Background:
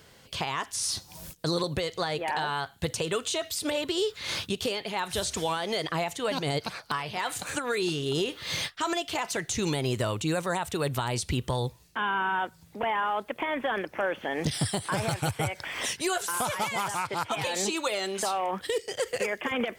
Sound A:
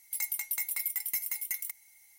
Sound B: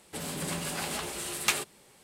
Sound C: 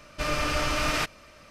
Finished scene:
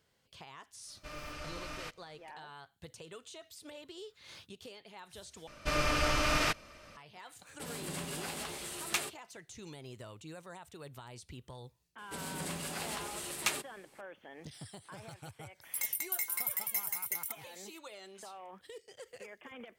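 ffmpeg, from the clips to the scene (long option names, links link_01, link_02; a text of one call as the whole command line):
ffmpeg -i bed.wav -i cue0.wav -i cue1.wav -i cue2.wav -filter_complex "[3:a]asplit=2[link_01][link_02];[2:a]asplit=2[link_03][link_04];[0:a]volume=-20dB[link_05];[link_03]agate=range=-33dB:threshold=-46dB:ratio=3:release=100:detection=peak[link_06];[link_05]asplit=2[link_07][link_08];[link_07]atrim=end=5.474[link_09];[link_02]atrim=end=1.5,asetpts=PTS-STARTPTS,volume=-3dB[link_10];[link_08]atrim=start=6.966[link_11];[link_01]atrim=end=1.5,asetpts=PTS-STARTPTS,volume=-17.5dB,afade=type=in:duration=0.05,afade=type=out:start_time=1.45:duration=0.05,adelay=850[link_12];[link_06]atrim=end=2.03,asetpts=PTS-STARTPTS,volume=-6.5dB,afade=type=in:duration=0.004:curve=hsin,afade=type=out:start_time=2.026:duration=0.004:curve=hsin,adelay=328986S[link_13];[link_04]atrim=end=2.03,asetpts=PTS-STARTPTS,volume=-5.5dB,afade=type=in:duration=0.004:curve=hsin,afade=type=out:start_time=2.026:duration=0.004:curve=hsin,adelay=11980[link_14];[1:a]atrim=end=2.18,asetpts=PTS-STARTPTS,volume=-2dB,afade=type=in:duration=0.004:curve=hsin,afade=type=out:start_time=2.176:duration=0.004:curve=hsin,adelay=15610[link_15];[link_09][link_10]acrossfade=duration=0.004:curve1=hsin:curve2=hsin[link_16];[link_16][link_11]acrossfade=duration=0.004:curve1=hsin:curve2=hsin[link_17];[link_17][link_12][link_13][link_14][link_15]amix=inputs=5:normalize=0" out.wav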